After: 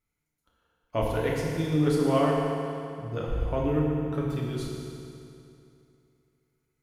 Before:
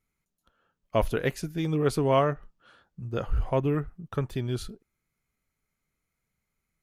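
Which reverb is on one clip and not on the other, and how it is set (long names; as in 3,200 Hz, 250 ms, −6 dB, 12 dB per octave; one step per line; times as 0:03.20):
feedback delay network reverb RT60 2.7 s, high-frequency decay 0.85×, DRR −4 dB
level −5.5 dB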